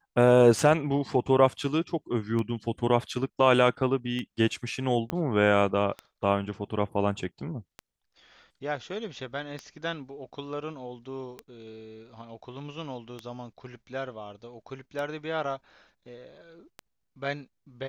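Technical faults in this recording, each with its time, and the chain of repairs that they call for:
scratch tick 33 1/3 rpm
0:05.10: click −16 dBFS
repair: click removal

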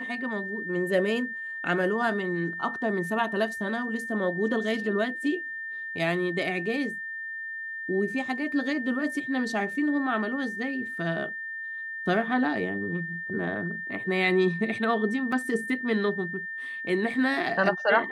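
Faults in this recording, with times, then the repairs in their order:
whistle 1,800 Hz −33 dBFS
0:15.32: drop-out 3.7 ms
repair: notch filter 1,800 Hz, Q 30
repair the gap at 0:15.32, 3.7 ms

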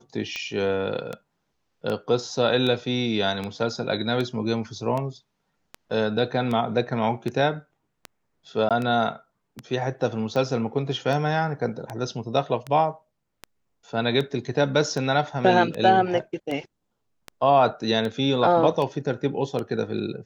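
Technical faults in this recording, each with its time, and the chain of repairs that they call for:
scratch tick 78 rpm −17 dBFS
0:08.69–0:08.71: drop-out 17 ms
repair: click removal
repair the gap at 0:08.69, 17 ms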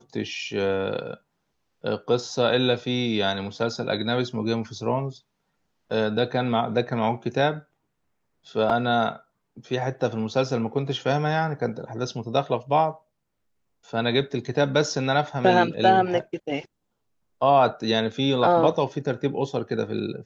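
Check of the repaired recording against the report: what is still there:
none of them is left

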